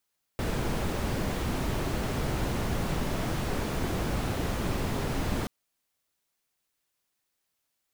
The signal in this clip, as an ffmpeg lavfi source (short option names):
-f lavfi -i "anoisesrc=c=brown:a=0.166:d=5.08:r=44100:seed=1"